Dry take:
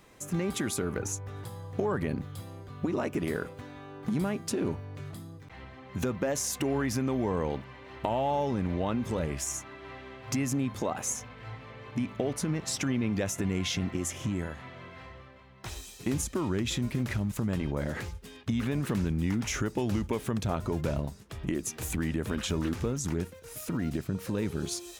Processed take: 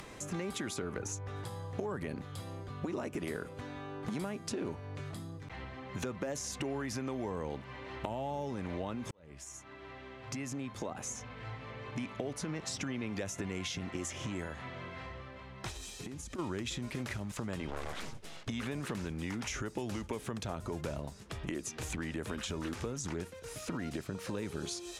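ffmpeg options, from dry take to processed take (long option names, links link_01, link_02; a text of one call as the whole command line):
ffmpeg -i in.wav -filter_complex "[0:a]asplit=3[link_01][link_02][link_03];[link_01]afade=type=out:start_time=15.7:duration=0.02[link_04];[link_02]acompressor=threshold=-40dB:ratio=16:attack=3.2:release=140:knee=1:detection=peak,afade=type=in:start_time=15.7:duration=0.02,afade=type=out:start_time=16.38:duration=0.02[link_05];[link_03]afade=type=in:start_time=16.38:duration=0.02[link_06];[link_04][link_05][link_06]amix=inputs=3:normalize=0,asettb=1/sr,asplit=3[link_07][link_08][link_09];[link_07]atrim=end=17.684[link_10];[link_08]atrim=start=17.68:end=18.48,asetpts=PTS-STARTPTS,afade=type=in:duration=0.004:curve=qsin,afade=type=out:start_time=0.796:duration=0.004:curve=qsin,aeval=exprs='abs(val(0))':channel_layout=same[link_11];[link_09]atrim=start=18.476[link_12];[link_10][link_11]acrossfade=duration=0.004:curve1=hsin:curve2=qsin[link_13];[link_13][link_12]acrossfade=duration=0.004:curve1=qsin:curve2=hsin,asplit=2[link_14][link_15];[link_14]atrim=end=9.11,asetpts=PTS-STARTPTS,afade=type=out:start_time=9.106:duration=0.004:curve=hsin[link_16];[link_15]atrim=start=9.11,asetpts=PTS-STARTPTS,afade=type=in:duration=3.11[link_17];[link_16][link_17]concat=n=2:v=0:a=1,acrossover=split=390|7000[link_18][link_19][link_20];[link_18]acompressor=threshold=-42dB:ratio=4[link_21];[link_19]acompressor=threshold=-41dB:ratio=4[link_22];[link_20]acompressor=threshold=-50dB:ratio=4[link_23];[link_21][link_22][link_23]amix=inputs=3:normalize=0,lowpass=9800,acompressor=mode=upward:threshold=-43dB:ratio=2.5,volume=1.5dB" out.wav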